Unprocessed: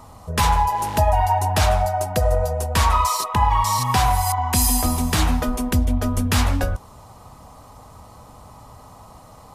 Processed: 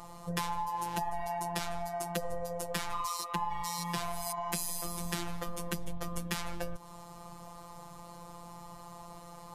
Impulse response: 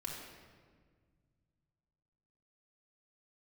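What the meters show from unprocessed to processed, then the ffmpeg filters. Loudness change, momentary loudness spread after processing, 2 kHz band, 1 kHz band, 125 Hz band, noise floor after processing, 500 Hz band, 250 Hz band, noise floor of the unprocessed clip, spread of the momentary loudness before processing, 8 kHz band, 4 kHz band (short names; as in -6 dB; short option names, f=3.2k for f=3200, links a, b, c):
-16.5 dB, 14 LU, -13.5 dB, -16.0 dB, -21.0 dB, -49 dBFS, -14.0 dB, -15.5 dB, -45 dBFS, 4 LU, -14.0 dB, -13.5 dB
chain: -af "afftfilt=real='hypot(re,im)*cos(PI*b)':imag='0':win_size=1024:overlap=0.75,acompressor=threshold=-31dB:ratio=6"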